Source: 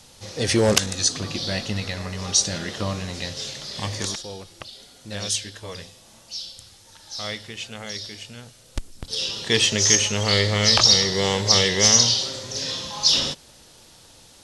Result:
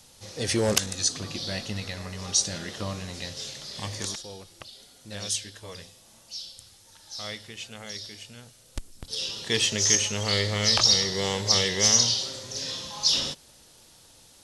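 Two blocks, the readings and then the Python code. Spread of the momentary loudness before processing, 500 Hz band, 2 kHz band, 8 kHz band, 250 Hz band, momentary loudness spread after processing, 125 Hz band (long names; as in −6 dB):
22 LU, −6.0 dB, −5.5 dB, −4.0 dB, −6.0 dB, 22 LU, −6.0 dB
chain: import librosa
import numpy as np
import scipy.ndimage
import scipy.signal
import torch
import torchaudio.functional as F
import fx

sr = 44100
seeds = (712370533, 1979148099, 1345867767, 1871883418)

y = fx.high_shelf(x, sr, hz=10000.0, db=9.0)
y = y * librosa.db_to_amplitude(-6.0)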